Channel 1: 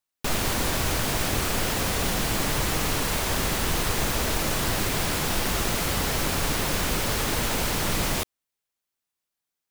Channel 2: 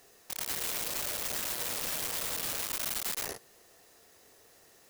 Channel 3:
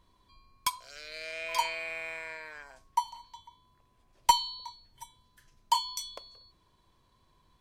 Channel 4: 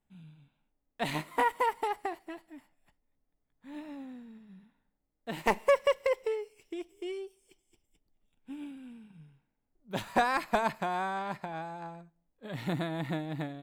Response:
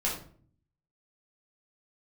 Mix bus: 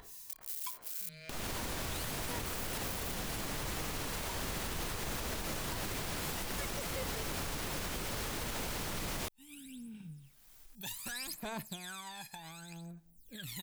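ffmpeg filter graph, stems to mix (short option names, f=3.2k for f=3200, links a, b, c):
-filter_complex "[0:a]alimiter=limit=-18dB:level=0:latency=1:release=230,adelay=1050,volume=2.5dB[a];[1:a]acrossover=split=1500[b][c];[b]aeval=exprs='val(0)*(1-1/2+1/2*cos(2*PI*2.5*n/s))':c=same[d];[c]aeval=exprs='val(0)*(1-1/2-1/2*cos(2*PI*2.5*n/s))':c=same[e];[d][e]amix=inputs=2:normalize=0,volume=-18dB,asplit=3[f][g][h];[f]atrim=end=1.09,asetpts=PTS-STARTPTS,afade=t=out:st=1.086:d=0.004:c=hsin[i];[g]atrim=start=1.09:end=2.45,asetpts=PTS-STARTPTS,volume=0[j];[h]atrim=start=2.45,asetpts=PTS-STARTPTS,afade=t=in:d=0.004:c=hsin[k];[i][j][k]concat=n=3:v=0:a=1[l];[2:a]volume=-14dB[m];[3:a]equalizer=f=990:t=o:w=2.8:g=-12,aphaser=in_gain=1:out_gain=1:delay=1.2:decay=0.79:speed=0.66:type=sinusoidal,adelay=900,volume=-12.5dB[n];[l][n]amix=inputs=2:normalize=0,crystalizer=i=8:c=0,alimiter=level_in=7dB:limit=-24dB:level=0:latency=1:release=21,volume=-7dB,volume=0dB[o];[a][m]amix=inputs=2:normalize=0,acompressor=threshold=-31dB:ratio=10,volume=0dB[p];[o][p]amix=inputs=2:normalize=0,acompressor=mode=upward:threshold=-40dB:ratio=2.5,alimiter=level_in=4dB:limit=-24dB:level=0:latency=1:release=190,volume=-4dB"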